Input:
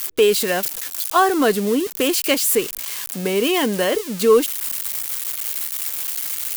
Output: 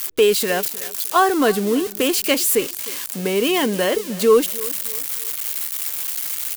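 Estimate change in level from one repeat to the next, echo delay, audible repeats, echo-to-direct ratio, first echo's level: −9.0 dB, 308 ms, 2, −18.5 dB, −19.0 dB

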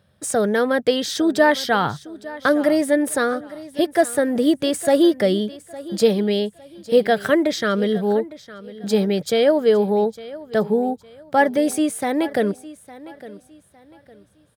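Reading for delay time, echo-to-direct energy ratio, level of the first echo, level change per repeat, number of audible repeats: 858 ms, −17.5 dB, −18.0 dB, −10.0 dB, 2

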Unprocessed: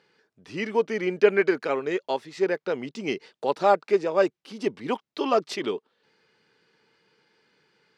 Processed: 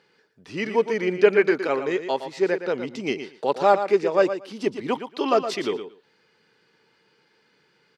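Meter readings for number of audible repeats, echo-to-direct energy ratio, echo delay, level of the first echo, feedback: 2, −10.0 dB, 116 ms, −10.0 dB, 15%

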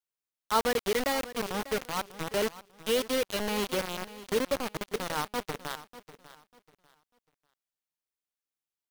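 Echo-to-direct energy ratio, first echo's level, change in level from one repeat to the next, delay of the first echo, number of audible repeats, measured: −15.5 dB, −16.0 dB, −11.5 dB, 595 ms, 2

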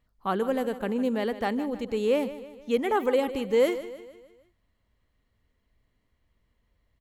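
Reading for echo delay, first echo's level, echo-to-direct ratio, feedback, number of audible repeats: 154 ms, −14.0 dB, −13.0 dB, 49%, 4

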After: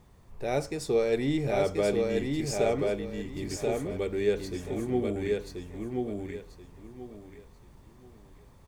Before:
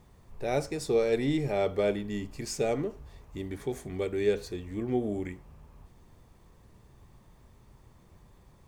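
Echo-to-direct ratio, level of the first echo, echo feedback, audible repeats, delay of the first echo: −2.5 dB, −3.0 dB, 25%, 3, 1,033 ms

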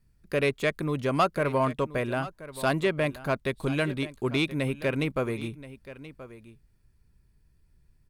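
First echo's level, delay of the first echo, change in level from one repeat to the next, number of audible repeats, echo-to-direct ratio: −16.0 dB, 1,028 ms, repeats not evenly spaced, 1, −16.0 dB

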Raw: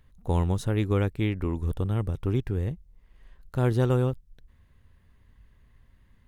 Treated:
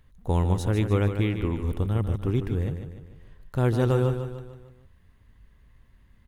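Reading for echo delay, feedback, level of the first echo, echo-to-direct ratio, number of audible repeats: 149 ms, 48%, −8.5 dB, −7.5 dB, 5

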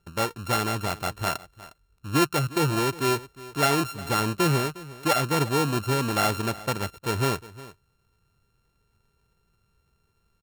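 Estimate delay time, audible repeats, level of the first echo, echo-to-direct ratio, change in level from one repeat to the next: 358 ms, 1, −18.5 dB, −18.5 dB, repeats not evenly spaced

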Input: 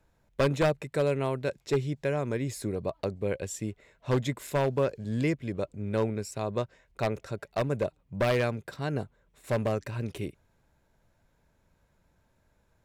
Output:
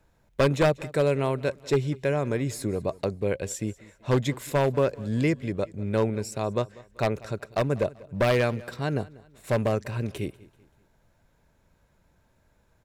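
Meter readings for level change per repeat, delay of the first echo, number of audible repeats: −8.0 dB, 193 ms, 2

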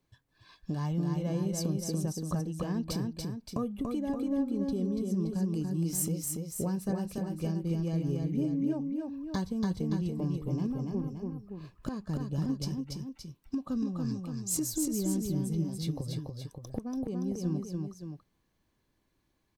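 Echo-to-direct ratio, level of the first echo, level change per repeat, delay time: −2.5 dB, −3.5 dB, −5.0 dB, 286 ms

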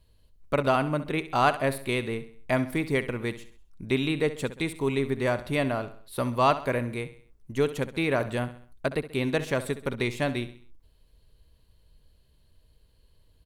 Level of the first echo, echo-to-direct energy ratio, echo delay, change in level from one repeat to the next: −14.0 dB, −13.0 dB, 66 ms, −7.0 dB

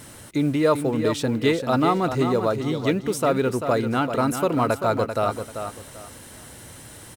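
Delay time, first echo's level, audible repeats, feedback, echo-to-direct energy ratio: 390 ms, −8.0 dB, 3, 25%, −7.5 dB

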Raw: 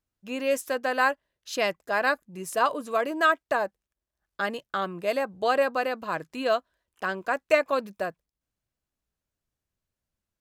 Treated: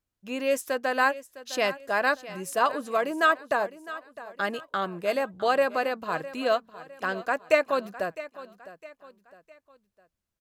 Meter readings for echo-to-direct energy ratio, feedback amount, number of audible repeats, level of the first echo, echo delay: −15.5 dB, 39%, 3, −16.0 dB, 658 ms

